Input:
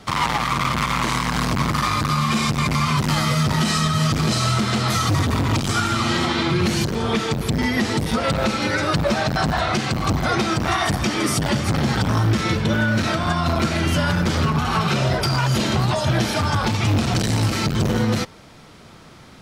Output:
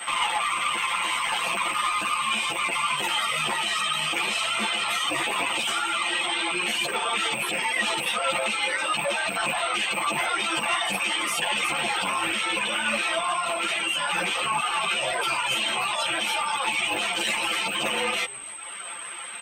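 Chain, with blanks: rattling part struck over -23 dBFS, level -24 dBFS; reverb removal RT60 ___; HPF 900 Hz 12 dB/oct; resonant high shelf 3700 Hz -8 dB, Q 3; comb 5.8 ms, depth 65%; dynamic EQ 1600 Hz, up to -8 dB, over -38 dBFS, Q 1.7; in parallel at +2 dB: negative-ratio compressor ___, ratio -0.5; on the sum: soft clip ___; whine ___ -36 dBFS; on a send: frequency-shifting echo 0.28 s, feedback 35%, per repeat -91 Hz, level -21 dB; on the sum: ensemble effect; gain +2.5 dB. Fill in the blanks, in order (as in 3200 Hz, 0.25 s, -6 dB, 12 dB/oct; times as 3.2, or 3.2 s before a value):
0.98 s, -34 dBFS, -15.5 dBFS, 8300 Hz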